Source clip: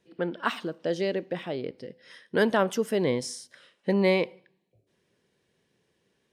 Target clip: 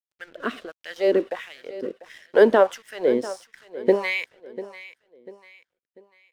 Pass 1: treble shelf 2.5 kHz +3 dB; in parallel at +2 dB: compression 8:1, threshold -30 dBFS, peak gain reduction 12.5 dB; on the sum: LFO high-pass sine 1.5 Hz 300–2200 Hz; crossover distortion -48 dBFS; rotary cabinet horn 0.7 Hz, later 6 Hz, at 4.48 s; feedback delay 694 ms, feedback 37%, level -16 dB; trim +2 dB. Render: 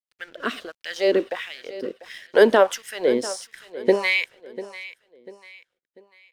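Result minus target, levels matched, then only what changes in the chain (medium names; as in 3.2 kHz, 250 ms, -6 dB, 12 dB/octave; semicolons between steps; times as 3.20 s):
4 kHz band +6.5 dB
change: treble shelf 2.5 kHz -8 dB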